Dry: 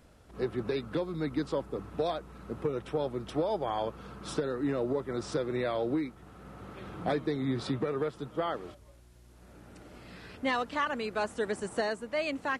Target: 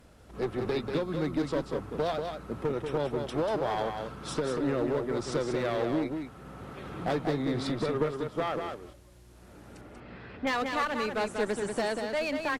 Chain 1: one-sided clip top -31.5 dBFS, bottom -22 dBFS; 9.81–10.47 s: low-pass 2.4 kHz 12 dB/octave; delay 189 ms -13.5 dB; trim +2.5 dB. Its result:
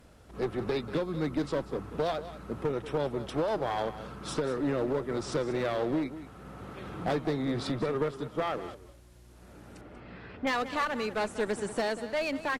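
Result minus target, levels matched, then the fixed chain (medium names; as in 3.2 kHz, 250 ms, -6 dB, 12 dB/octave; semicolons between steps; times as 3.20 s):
echo-to-direct -8 dB
one-sided clip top -31.5 dBFS, bottom -22 dBFS; 9.81–10.47 s: low-pass 2.4 kHz 12 dB/octave; delay 189 ms -5.5 dB; trim +2.5 dB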